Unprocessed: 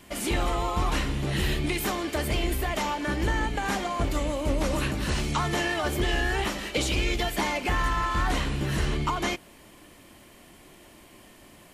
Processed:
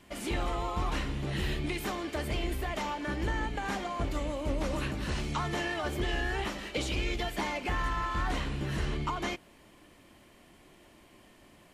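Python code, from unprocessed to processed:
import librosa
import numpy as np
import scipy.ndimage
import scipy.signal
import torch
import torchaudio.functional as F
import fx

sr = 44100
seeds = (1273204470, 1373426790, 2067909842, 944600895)

y = fx.high_shelf(x, sr, hz=7600.0, db=-8.5)
y = y * 10.0 ** (-5.5 / 20.0)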